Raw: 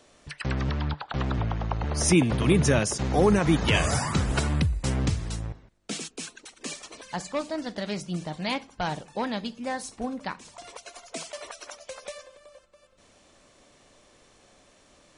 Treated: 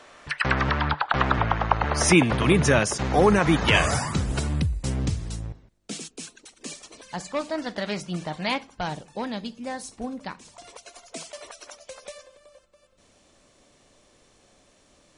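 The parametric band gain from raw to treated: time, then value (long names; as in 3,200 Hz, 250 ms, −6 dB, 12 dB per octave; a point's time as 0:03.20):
parametric band 1,400 Hz 2.7 octaves
0:01.77 +14 dB
0:02.57 +6.5 dB
0:03.82 +6.5 dB
0:04.23 −5 dB
0:06.92 −5 dB
0:07.59 +6 dB
0:08.43 +6 dB
0:08.98 −3 dB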